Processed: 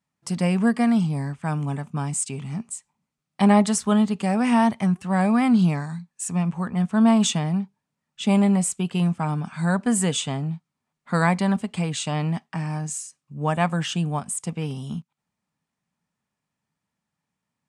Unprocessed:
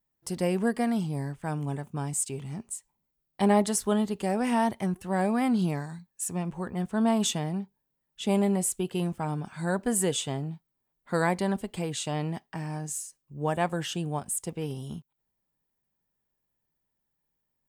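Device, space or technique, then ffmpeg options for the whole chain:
car door speaker: -af "highpass=94,equalizer=f=170:t=q:w=4:g=5,equalizer=f=230:t=q:w=4:g=4,equalizer=f=360:t=q:w=4:g=-8,equalizer=f=510:t=q:w=4:g=-4,equalizer=f=1.2k:t=q:w=4:g=5,equalizer=f=2.4k:t=q:w=4:g=4,lowpass=f=9.3k:w=0.5412,lowpass=f=9.3k:w=1.3066,volume=4.5dB"

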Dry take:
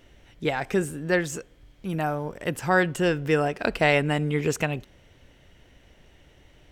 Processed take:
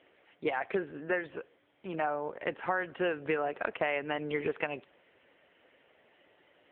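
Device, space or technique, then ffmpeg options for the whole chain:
voicemail: -af "highpass=420,lowpass=2.7k,acompressor=threshold=-27dB:ratio=8,volume=1dB" -ar 8000 -c:a libopencore_amrnb -b:a 6700

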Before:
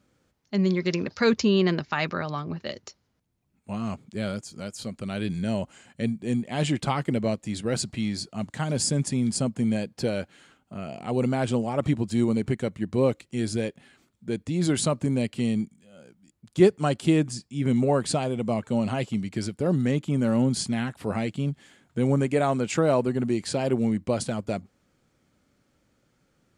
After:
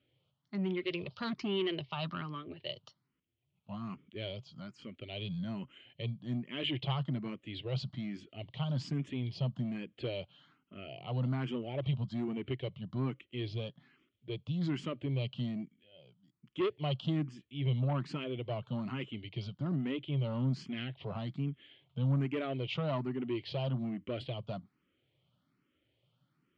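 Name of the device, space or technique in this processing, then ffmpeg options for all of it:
barber-pole phaser into a guitar amplifier: -filter_complex "[0:a]asplit=2[a][b];[b]afreqshift=1.2[c];[a][c]amix=inputs=2:normalize=1,asoftclip=type=tanh:threshold=-21dB,highpass=100,equalizer=f=130:t=q:w=4:g=7,equalizer=f=220:t=q:w=4:g=-6,equalizer=f=490:t=q:w=4:g=-5,equalizer=f=810:t=q:w=4:g=-6,equalizer=f=1.6k:t=q:w=4:g=-6,equalizer=f=3.1k:t=q:w=4:g=10,lowpass=f=3.8k:w=0.5412,lowpass=f=3.8k:w=1.3066,volume=-5dB"

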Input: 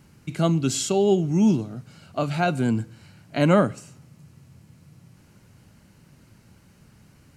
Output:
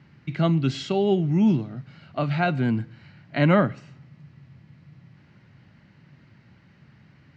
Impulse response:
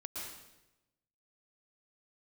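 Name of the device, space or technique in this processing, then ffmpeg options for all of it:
guitar cabinet: -af "highpass=78,equalizer=f=140:t=q:w=4:g=5,equalizer=f=460:t=q:w=4:g=-4,equalizer=f=1.9k:t=q:w=4:g=8,lowpass=f=4.3k:w=0.5412,lowpass=f=4.3k:w=1.3066,volume=-1dB"

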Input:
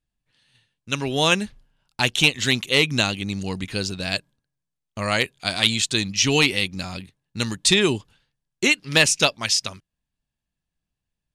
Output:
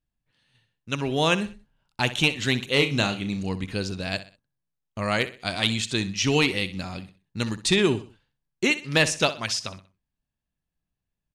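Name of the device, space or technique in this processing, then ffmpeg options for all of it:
behind a face mask: -filter_complex "[0:a]asettb=1/sr,asplit=3[a][b][c];[a]atrim=end=2.704[d];[b]atrim=start=2.7:end=3.49,asetpts=PTS-STARTPTS,afade=t=in:d=0.004:c=qsin,afade=t=out:st=0.786:d=0.004:c=qsin,asplit=2[e][f];[f]adelay=35,volume=-9dB[g];[e][g]amix=inputs=2:normalize=0,atrim=end_sample=34839[h];[c]atrim=start=3.486[i];[d][h]acrossfade=d=0.004:c1=hsin:c2=qsin[j];[j][i]acrossfade=d=0.004:c1=qsin:c2=hsin,highshelf=f=2.8k:g=-8,aecho=1:1:63|126|189:0.188|0.0659|0.0231,volume=-1dB"

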